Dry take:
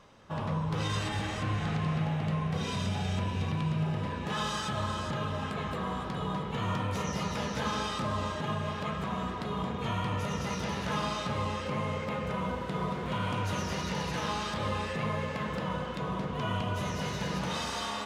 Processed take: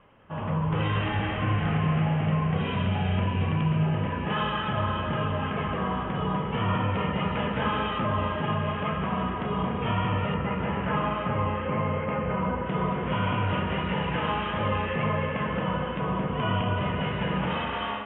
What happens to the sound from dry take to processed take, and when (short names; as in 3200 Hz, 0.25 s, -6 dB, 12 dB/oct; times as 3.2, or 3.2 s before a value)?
10.34–12.66 LPF 2300 Hz
whole clip: steep low-pass 3200 Hz 96 dB/oct; de-hum 71.11 Hz, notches 34; AGC gain up to 6 dB